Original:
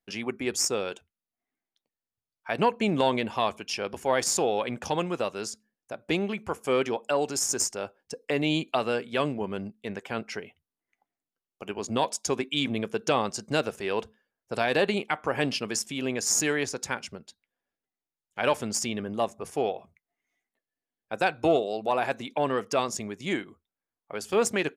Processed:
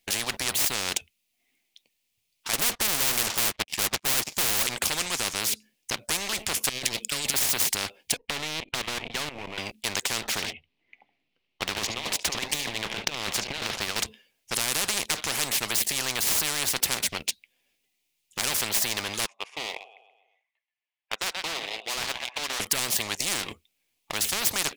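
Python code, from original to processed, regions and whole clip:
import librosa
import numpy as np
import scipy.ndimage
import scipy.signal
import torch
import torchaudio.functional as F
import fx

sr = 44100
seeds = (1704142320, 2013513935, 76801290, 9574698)

y = fx.chain(x, sr, fx.lowpass(hz=1300.0, slope=12),
    fx.leveller(passes=5),
    fx.upward_expand(threshold_db=-34.0, expansion=2.5), at=(2.53, 4.67))
y = fx.chain(y, sr, fx.cheby1_bandstop(low_hz=210.0, high_hz=2800.0, order=2),
    fx.over_compress(threshold_db=-41.0, ratio=-0.5),
    fx.peak_eq(hz=560.0, db=10.0, octaves=0.91), at=(6.69, 7.34))
y = fx.chain(y, sr, fx.halfwave_gain(db=-7.0),
    fx.lowpass(hz=1400.0, slope=12),
    fx.level_steps(step_db=16), at=(8.17, 9.58))
y = fx.chain(y, sr, fx.air_absorb(metres=330.0),
    fx.over_compress(threshold_db=-34.0, ratio=-0.5),
    fx.echo_single(ms=72, db=-15.5), at=(10.23, 13.96))
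y = fx.chain(y, sr, fx.ladder_bandpass(hz=1200.0, resonance_pct=40),
    fx.tilt_shelf(db=-3.0, hz=930.0),
    fx.echo_feedback(ms=129, feedback_pct=50, wet_db=-14), at=(19.26, 22.6))
y = fx.leveller(y, sr, passes=2)
y = fx.high_shelf_res(y, sr, hz=1900.0, db=8.5, q=3.0)
y = fx.spectral_comp(y, sr, ratio=10.0)
y = F.gain(torch.from_numpy(y), -5.5).numpy()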